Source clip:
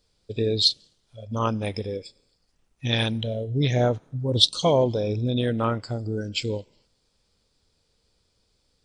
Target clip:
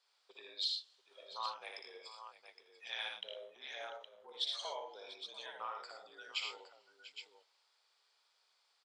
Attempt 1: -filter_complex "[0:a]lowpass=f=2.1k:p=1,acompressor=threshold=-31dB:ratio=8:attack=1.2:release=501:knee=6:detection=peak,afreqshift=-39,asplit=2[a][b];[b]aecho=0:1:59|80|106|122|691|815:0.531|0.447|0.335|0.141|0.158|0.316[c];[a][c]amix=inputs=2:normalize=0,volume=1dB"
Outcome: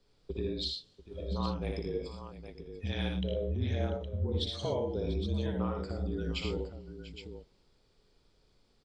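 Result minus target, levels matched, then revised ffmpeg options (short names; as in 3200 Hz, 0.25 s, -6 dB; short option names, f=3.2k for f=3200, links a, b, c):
1000 Hz band -6.0 dB
-filter_complex "[0:a]lowpass=f=2.1k:p=1,acompressor=threshold=-31dB:ratio=8:attack=1.2:release=501:knee=6:detection=peak,highpass=f=860:w=0.5412,highpass=f=860:w=1.3066,afreqshift=-39,asplit=2[a][b];[b]aecho=0:1:59|80|106|122|691|815:0.531|0.447|0.335|0.141|0.158|0.316[c];[a][c]amix=inputs=2:normalize=0,volume=1dB"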